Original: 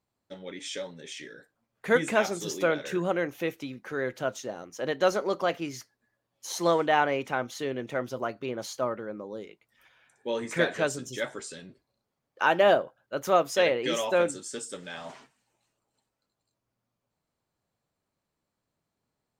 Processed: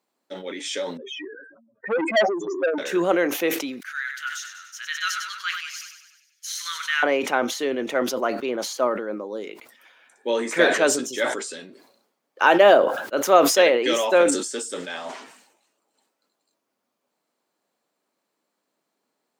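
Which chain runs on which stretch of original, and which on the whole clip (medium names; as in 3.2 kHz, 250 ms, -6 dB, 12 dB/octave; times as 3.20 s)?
0.97–2.78 s: spectral contrast enhancement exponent 3.7 + comb 3.2 ms, depth 51% + transformer saturation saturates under 1.8 kHz
3.80–7.03 s: elliptic high-pass 1.4 kHz, stop band 50 dB + feedback delay 97 ms, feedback 58%, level -9.5 dB
whole clip: de-esser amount 75%; high-pass 240 Hz 24 dB/octave; decay stretcher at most 70 dB/s; trim +7 dB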